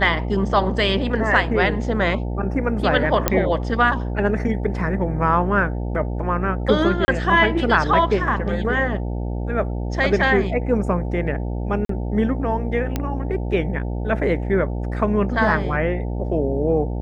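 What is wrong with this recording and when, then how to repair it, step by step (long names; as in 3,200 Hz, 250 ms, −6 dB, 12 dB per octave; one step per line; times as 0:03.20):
mains buzz 60 Hz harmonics 15 −25 dBFS
0:03.28: click −1 dBFS
0:07.05–0:07.08: drop-out 30 ms
0:11.85–0:11.89: drop-out 43 ms
0:12.96: click −9 dBFS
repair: click removal
hum removal 60 Hz, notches 15
repair the gap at 0:07.05, 30 ms
repair the gap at 0:11.85, 43 ms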